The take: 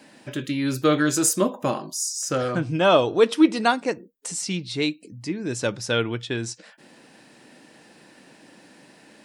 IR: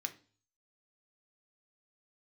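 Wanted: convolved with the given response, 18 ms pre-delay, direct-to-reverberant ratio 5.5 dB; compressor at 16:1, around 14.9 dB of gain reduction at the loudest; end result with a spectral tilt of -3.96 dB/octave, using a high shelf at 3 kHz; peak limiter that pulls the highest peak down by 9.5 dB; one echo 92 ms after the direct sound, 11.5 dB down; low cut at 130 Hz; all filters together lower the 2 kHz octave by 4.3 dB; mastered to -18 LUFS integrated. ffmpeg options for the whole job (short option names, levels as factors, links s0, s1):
-filter_complex "[0:a]highpass=130,equalizer=f=2000:t=o:g=-4.5,highshelf=f=3000:g=-4.5,acompressor=threshold=0.0501:ratio=16,alimiter=level_in=1.19:limit=0.0631:level=0:latency=1,volume=0.841,aecho=1:1:92:0.266,asplit=2[s0][s1];[1:a]atrim=start_sample=2205,adelay=18[s2];[s1][s2]afir=irnorm=-1:irlink=0,volume=0.562[s3];[s0][s3]amix=inputs=2:normalize=0,volume=6.31"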